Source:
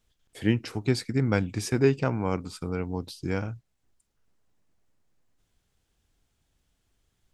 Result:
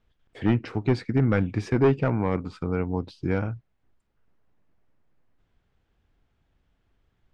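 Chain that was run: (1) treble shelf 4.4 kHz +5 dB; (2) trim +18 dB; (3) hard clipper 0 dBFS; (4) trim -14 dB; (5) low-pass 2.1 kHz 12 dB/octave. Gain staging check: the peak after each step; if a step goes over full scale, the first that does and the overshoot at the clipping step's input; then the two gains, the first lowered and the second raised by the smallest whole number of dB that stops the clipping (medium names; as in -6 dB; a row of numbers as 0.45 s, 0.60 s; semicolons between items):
-8.0 dBFS, +10.0 dBFS, 0.0 dBFS, -14.0 dBFS, -13.5 dBFS; step 2, 10.0 dB; step 2 +8 dB, step 4 -4 dB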